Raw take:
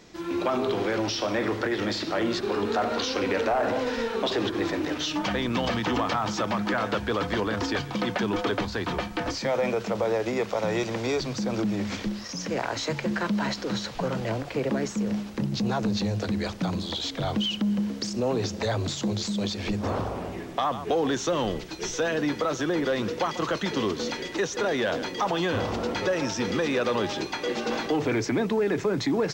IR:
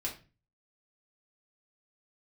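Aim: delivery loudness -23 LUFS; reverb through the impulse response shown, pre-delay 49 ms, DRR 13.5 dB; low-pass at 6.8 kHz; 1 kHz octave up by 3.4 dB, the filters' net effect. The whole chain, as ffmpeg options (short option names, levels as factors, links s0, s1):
-filter_complex "[0:a]lowpass=6800,equalizer=f=1000:t=o:g=4.5,asplit=2[s0][s1];[1:a]atrim=start_sample=2205,adelay=49[s2];[s1][s2]afir=irnorm=-1:irlink=0,volume=0.168[s3];[s0][s3]amix=inputs=2:normalize=0,volume=1.5"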